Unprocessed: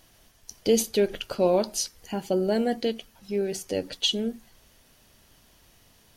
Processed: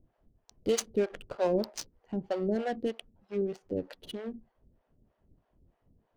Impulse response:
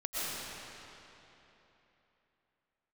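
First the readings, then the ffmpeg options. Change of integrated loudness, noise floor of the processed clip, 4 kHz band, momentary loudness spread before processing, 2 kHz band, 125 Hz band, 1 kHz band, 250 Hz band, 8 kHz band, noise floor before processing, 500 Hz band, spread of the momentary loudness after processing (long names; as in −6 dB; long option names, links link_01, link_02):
−7.0 dB, −77 dBFS, −15.0 dB, 9 LU, −6.0 dB, −5.0 dB, −5.5 dB, −6.0 dB, −10.0 dB, −60 dBFS, −6.0 dB, 13 LU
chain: -filter_complex "[0:a]adynamicsmooth=sensitivity=4.5:basefreq=630,acrossover=split=500[link_01][link_02];[link_01]aeval=exprs='val(0)*(1-1/2+1/2*cos(2*PI*3.2*n/s))':channel_layout=same[link_03];[link_02]aeval=exprs='val(0)*(1-1/2-1/2*cos(2*PI*3.2*n/s))':channel_layout=same[link_04];[link_03][link_04]amix=inputs=2:normalize=0"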